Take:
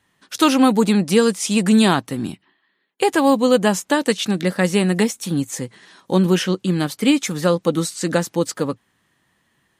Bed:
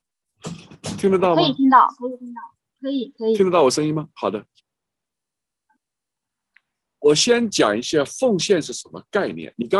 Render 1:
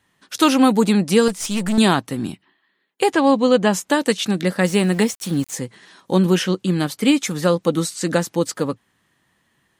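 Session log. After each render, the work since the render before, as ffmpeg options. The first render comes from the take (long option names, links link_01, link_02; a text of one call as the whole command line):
ffmpeg -i in.wav -filter_complex "[0:a]asettb=1/sr,asplit=3[link_01][link_02][link_03];[link_01]atrim=end=1.284[link_04];[link_02]atrim=start=1.28:end=1.78,asetpts=PTS-STARTPTS,afade=type=in:duration=0.004:curve=qsin,afade=type=out:start_time=0.496:duration=0.004:curve=qsin,aeval=exprs='(tanh(7.08*val(0)+0.5)-tanh(0.5))/7.08':channel_layout=same[link_05];[link_03]atrim=start=1.776[link_06];[link_04][link_05]acrossfade=duration=0.004:curve1=hsin:curve2=qsin[link_07];[link_07][link_06]acrossfade=duration=0.004:curve1=qsin:curve2=hsin,asettb=1/sr,asplit=3[link_08][link_09][link_10];[link_08]atrim=end=3.124[link_11];[link_09]atrim=start=3.12:end=3.73,asetpts=PTS-STARTPTS,afade=type=in:duration=0.004:curve=qsin,afade=type=out:start_time=0.606:duration=0.004:curve=qsin,lowpass=5600[link_12];[link_10]atrim=start=3.726[link_13];[link_11][link_12]acrossfade=duration=0.004:curve1=hsin:curve2=qsin[link_14];[link_14][link_13]acrossfade=duration=0.004:curve1=qsin:curve2=hsin,asettb=1/sr,asplit=3[link_15][link_16][link_17];[link_15]atrim=end=4.654[link_18];[link_16]atrim=start=4.65:end=5.56,asetpts=PTS-STARTPTS,afade=type=in:duration=0.004:curve=qsin,afade=type=out:start_time=0.906:duration=0.004:curve=qsin,aeval=exprs='val(0)*gte(abs(val(0)),0.02)':channel_layout=same[link_19];[link_17]atrim=start=5.556[link_20];[link_18][link_19]acrossfade=duration=0.004:curve1=hsin:curve2=qsin[link_21];[link_21][link_20]acrossfade=duration=0.004:curve1=qsin:curve2=hsin" out.wav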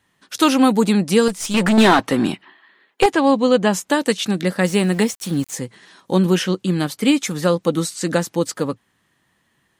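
ffmpeg -i in.wav -filter_complex "[0:a]asettb=1/sr,asplit=3[link_01][link_02][link_03];[link_01]atrim=end=1.544[link_04];[link_02]atrim=start=1.54:end=3.06,asetpts=PTS-STARTPTS,afade=type=in:duration=0.004:curve=qsin,afade=type=out:start_time=1.516:duration=0.004:curve=qsin,asplit=2[link_05][link_06];[link_06]highpass=frequency=720:poles=1,volume=23dB,asoftclip=type=tanh:threshold=-3dB[link_07];[link_05][link_07]amix=inputs=2:normalize=0,lowpass=frequency=1900:poles=1,volume=-6dB[link_08];[link_03]atrim=start=3.056[link_09];[link_04][link_08]acrossfade=duration=0.004:curve1=hsin:curve2=qsin[link_10];[link_10][link_09]acrossfade=duration=0.004:curve1=qsin:curve2=hsin" out.wav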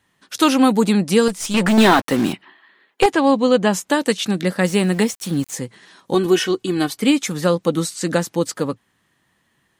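ffmpeg -i in.wav -filter_complex "[0:a]asettb=1/sr,asplit=3[link_01][link_02][link_03];[link_01]atrim=end=1.694[link_04];[link_02]atrim=start=1.69:end=2.33,asetpts=PTS-STARTPTS,afade=type=in:duration=0.004:curve=qsin,afade=type=out:start_time=0.636:duration=0.004:curve=qsin,acrusher=bits=4:mix=0:aa=0.5[link_05];[link_03]atrim=start=2.326[link_06];[link_04][link_05]acrossfade=duration=0.004:curve1=hsin:curve2=qsin[link_07];[link_07][link_06]acrossfade=duration=0.004:curve1=qsin:curve2=hsin,asettb=1/sr,asplit=3[link_08][link_09][link_10];[link_08]atrim=end=6.144[link_11];[link_09]atrim=start=6.14:end=6.98,asetpts=PTS-STARTPTS,afade=type=in:duration=0.004:curve=qsin,afade=type=out:start_time=0.836:duration=0.004:curve=qsin,aecho=1:1:2.7:0.65,atrim=end_sample=37044[link_12];[link_10]atrim=start=6.976[link_13];[link_11][link_12]acrossfade=duration=0.004:curve1=hsin:curve2=qsin[link_14];[link_14][link_13]acrossfade=duration=0.004:curve1=qsin:curve2=hsin" out.wav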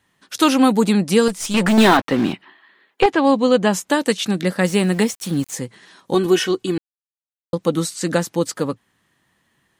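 ffmpeg -i in.wav -filter_complex "[0:a]asettb=1/sr,asplit=3[link_01][link_02][link_03];[link_01]atrim=end=1.974[link_04];[link_02]atrim=start=1.97:end=3.25,asetpts=PTS-STARTPTS,afade=type=in:duration=0.004:curve=qsin,afade=type=out:start_time=1.276:duration=0.004:curve=qsin,acrossover=split=4900[link_05][link_06];[link_06]acompressor=threshold=-50dB:ratio=4:attack=1:release=60[link_07];[link_05][link_07]amix=inputs=2:normalize=0[link_08];[link_03]atrim=start=3.246[link_09];[link_04][link_08]acrossfade=duration=0.004:curve1=hsin:curve2=qsin[link_10];[link_10][link_09]acrossfade=duration=0.004:curve1=qsin:curve2=hsin,asplit=3[link_11][link_12][link_13];[link_11]atrim=end=6.78,asetpts=PTS-STARTPTS,afade=type=out:start_time=6.776:duration=0.004:curve=hsin[link_14];[link_12]atrim=start=6.78:end=7.53,asetpts=PTS-STARTPTS,volume=0[link_15];[link_13]atrim=start=7.53,asetpts=PTS-STARTPTS,afade=type=in:duration=0.004:curve=hsin[link_16];[link_14][link_15][link_16]concat=n=3:v=0:a=1" out.wav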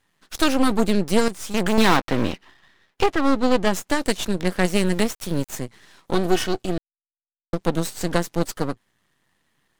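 ffmpeg -i in.wav -af "aeval=exprs='max(val(0),0)':channel_layout=same" out.wav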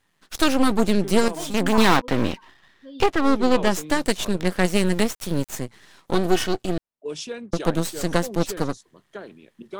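ffmpeg -i in.wav -i bed.wav -filter_complex "[1:a]volume=-17dB[link_01];[0:a][link_01]amix=inputs=2:normalize=0" out.wav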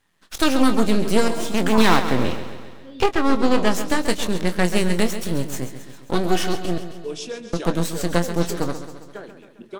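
ffmpeg -i in.wav -filter_complex "[0:a]asplit=2[link_01][link_02];[link_02]adelay=23,volume=-11dB[link_03];[link_01][link_03]amix=inputs=2:normalize=0,aecho=1:1:134|268|402|536|670|804|938:0.282|0.163|0.0948|0.055|0.0319|0.0185|0.0107" out.wav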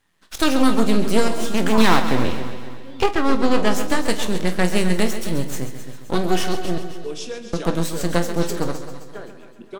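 ffmpeg -i in.wav -filter_complex "[0:a]asplit=2[link_01][link_02];[link_02]adelay=49,volume=-14dB[link_03];[link_01][link_03]amix=inputs=2:normalize=0,aecho=1:1:260|520|780|1040:0.178|0.0765|0.0329|0.0141" out.wav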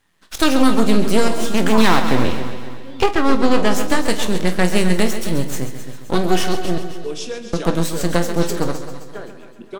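ffmpeg -i in.wav -af "volume=3dB,alimiter=limit=-1dB:level=0:latency=1" out.wav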